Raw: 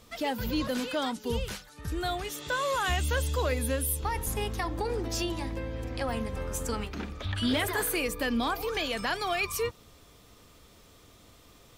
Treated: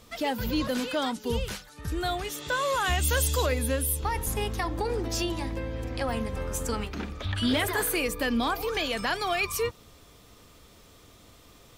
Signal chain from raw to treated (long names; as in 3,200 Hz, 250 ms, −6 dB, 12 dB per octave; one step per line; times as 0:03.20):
0:03.01–0:03.45: high-shelf EQ 6,500 Hz → 3,900 Hz +12 dB
level +2 dB